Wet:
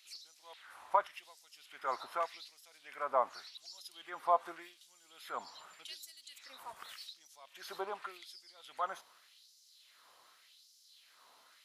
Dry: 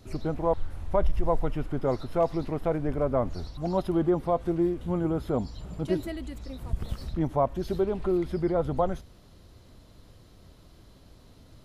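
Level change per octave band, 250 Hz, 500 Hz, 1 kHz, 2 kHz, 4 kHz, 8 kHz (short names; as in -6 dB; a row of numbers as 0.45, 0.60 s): -31.5 dB, -15.0 dB, -3.5 dB, -1.5 dB, +1.0 dB, n/a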